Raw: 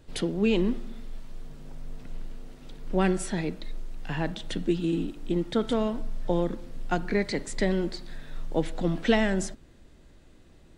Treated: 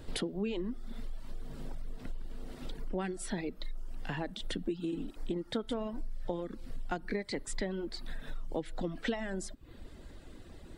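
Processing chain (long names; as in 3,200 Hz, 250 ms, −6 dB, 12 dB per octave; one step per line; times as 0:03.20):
thirty-one-band graphic EQ 160 Hz −4 dB, 2,500 Hz −3 dB, 6,300 Hz −5 dB
downward compressor 5 to 1, threshold −40 dBFS, peak gain reduction 20 dB
reverb reduction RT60 0.77 s
level +7 dB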